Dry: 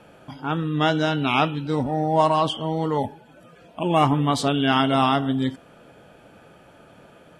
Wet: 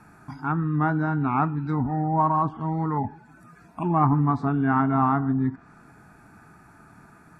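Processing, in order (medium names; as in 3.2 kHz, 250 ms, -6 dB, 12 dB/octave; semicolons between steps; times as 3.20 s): static phaser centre 1.3 kHz, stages 4; low-pass that closes with the level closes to 1.2 kHz, closed at -22.5 dBFS; trim +2.5 dB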